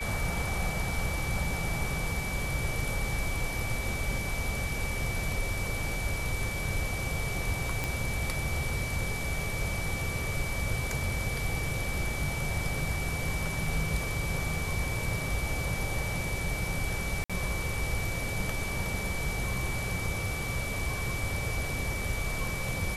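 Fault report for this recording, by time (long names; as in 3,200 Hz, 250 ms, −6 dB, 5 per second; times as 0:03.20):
whistle 2,300 Hz −36 dBFS
0:07.84: click
0:17.24–0:17.30: drop-out 56 ms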